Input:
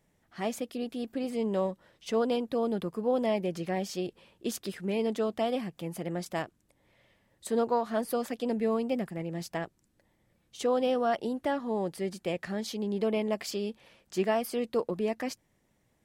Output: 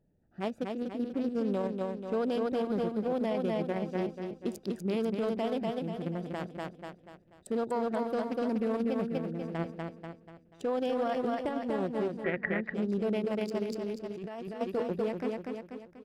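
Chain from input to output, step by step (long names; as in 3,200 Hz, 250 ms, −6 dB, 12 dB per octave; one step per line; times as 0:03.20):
adaptive Wiener filter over 41 samples
on a send: repeating echo 243 ms, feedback 45%, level −4 dB
on the sum: brickwall limiter −24.5 dBFS, peak gain reduction 10.5 dB
in parallel at −2.5 dB: output level in coarse steps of 11 dB
0:12.24–0:12.74: on the sum: low-pass with resonance 1,900 Hz, resonance Q 15
0:13.66–0:14.61: compressor whose output falls as the input rises −35 dBFS, ratio −1
level −2.5 dB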